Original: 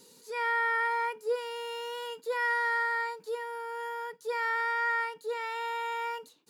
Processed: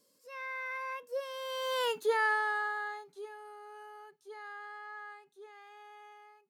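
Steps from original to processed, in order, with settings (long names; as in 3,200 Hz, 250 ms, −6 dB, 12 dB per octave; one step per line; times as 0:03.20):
fade-out on the ending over 0.62 s
source passing by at 0:01.88, 39 m/s, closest 6.6 metres
level +7.5 dB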